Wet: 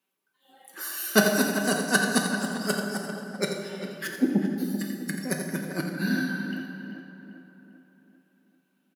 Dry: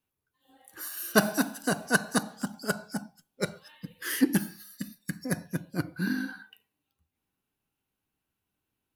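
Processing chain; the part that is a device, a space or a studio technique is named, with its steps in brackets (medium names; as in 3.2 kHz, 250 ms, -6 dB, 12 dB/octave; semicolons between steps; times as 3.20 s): 4.07–4.58 s: steep low-pass 880 Hz 72 dB/octave; dynamic bell 1.2 kHz, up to -5 dB, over -39 dBFS, Q 0.77; PA in a hall (high-pass 190 Hz 24 dB/octave; peaking EQ 2.4 kHz +3.5 dB 2.6 oct; delay 85 ms -9.5 dB; reverberation RT60 2.3 s, pre-delay 8 ms, DRR 3 dB); comb 5.2 ms, depth 41%; tape echo 393 ms, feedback 55%, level -9 dB, low-pass 2.2 kHz; trim +1.5 dB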